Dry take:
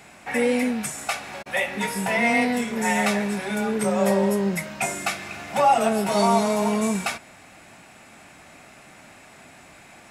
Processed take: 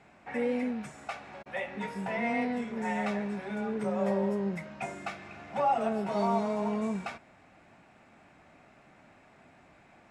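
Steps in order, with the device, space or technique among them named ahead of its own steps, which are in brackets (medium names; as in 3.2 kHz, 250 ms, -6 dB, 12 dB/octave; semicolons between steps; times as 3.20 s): through cloth (low-pass 7.3 kHz 12 dB/octave; treble shelf 2.8 kHz -13.5 dB); trim -8 dB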